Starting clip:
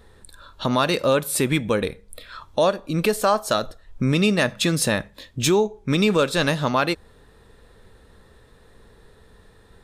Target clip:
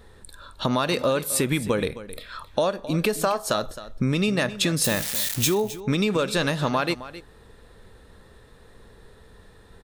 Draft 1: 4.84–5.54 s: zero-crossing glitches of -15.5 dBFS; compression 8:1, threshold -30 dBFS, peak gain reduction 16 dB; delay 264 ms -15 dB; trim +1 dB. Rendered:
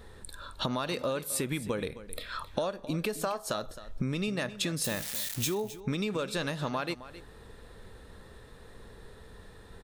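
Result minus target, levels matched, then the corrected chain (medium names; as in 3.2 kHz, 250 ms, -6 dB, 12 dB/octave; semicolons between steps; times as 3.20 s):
compression: peak gain reduction +9 dB
4.84–5.54 s: zero-crossing glitches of -15.5 dBFS; compression 8:1, threshold -19.5 dBFS, peak gain reduction 6.5 dB; delay 264 ms -15 dB; trim +1 dB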